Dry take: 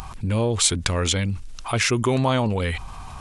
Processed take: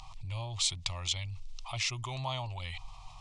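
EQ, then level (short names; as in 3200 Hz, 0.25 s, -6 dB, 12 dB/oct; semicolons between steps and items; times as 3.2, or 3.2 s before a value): air absorption 130 m; passive tone stack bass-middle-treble 10-0-10; fixed phaser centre 310 Hz, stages 8; 0.0 dB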